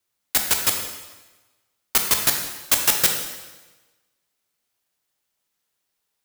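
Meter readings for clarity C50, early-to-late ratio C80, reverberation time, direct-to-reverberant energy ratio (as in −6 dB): 5.0 dB, 7.0 dB, 1.2 s, 3.0 dB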